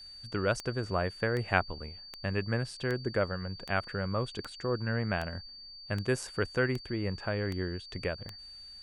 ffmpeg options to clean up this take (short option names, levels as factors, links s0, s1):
-af "adeclick=t=4,bandreject=f=4600:w=30"